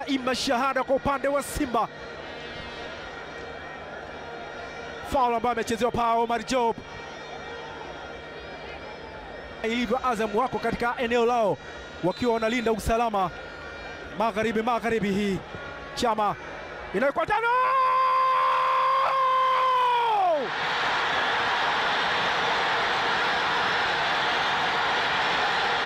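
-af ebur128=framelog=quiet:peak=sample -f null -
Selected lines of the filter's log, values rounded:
Integrated loudness:
  I:         -24.4 LUFS
  Threshold: -35.6 LUFS
Loudness range:
  LRA:         9.2 LU
  Threshold: -45.7 LUFS
  LRA low:   -31.6 LUFS
  LRA high:  -22.4 LUFS
Sample peak:
  Peak:      -13.8 dBFS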